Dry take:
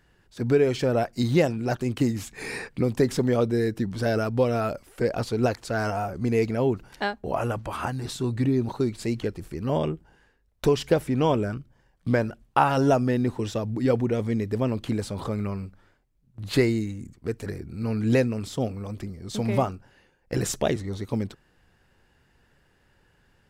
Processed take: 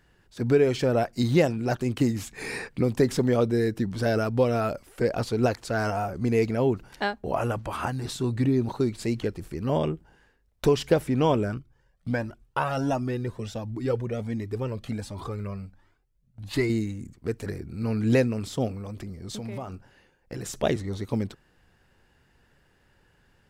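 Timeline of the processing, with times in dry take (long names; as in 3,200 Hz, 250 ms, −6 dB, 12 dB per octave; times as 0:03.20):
0:11.59–0:16.70: flanger whose copies keep moving one way rising 1.4 Hz
0:18.72–0:20.63: downward compressor 5 to 1, threshold −32 dBFS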